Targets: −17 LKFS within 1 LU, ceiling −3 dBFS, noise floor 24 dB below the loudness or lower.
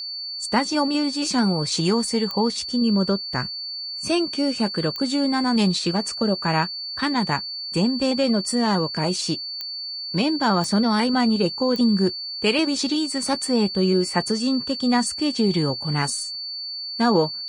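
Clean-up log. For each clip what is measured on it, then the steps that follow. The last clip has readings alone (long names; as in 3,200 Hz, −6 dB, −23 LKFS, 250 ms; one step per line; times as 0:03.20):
number of clicks 5; interfering tone 4,500 Hz; level of the tone −29 dBFS; integrated loudness −22.0 LKFS; sample peak −5.5 dBFS; target loudness −17.0 LKFS
→ click removal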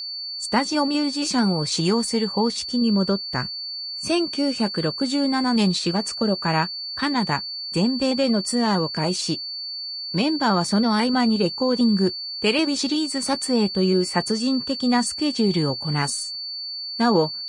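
number of clicks 0; interfering tone 4,500 Hz; level of the tone −29 dBFS
→ notch filter 4,500 Hz, Q 30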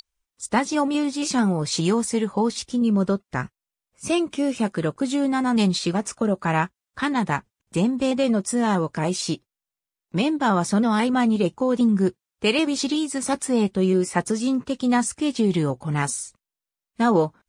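interfering tone none found; integrated loudness −23.0 LKFS; sample peak −6.0 dBFS; target loudness −17.0 LKFS
→ level +6 dB
brickwall limiter −3 dBFS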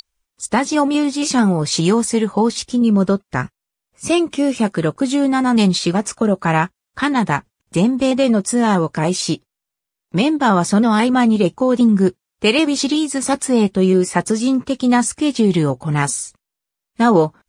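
integrated loudness −17.0 LKFS; sample peak −3.0 dBFS; background noise floor −83 dBFS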